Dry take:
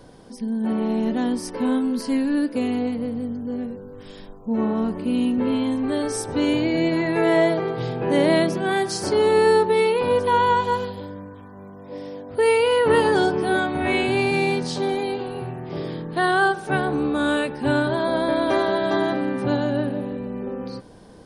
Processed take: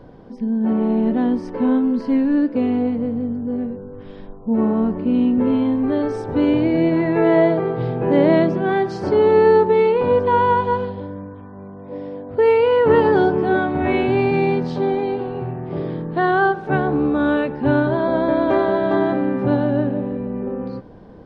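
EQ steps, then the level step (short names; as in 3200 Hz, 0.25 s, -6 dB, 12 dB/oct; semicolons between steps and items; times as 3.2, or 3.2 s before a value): tape spacing loss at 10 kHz 37 dB; +5.5 dB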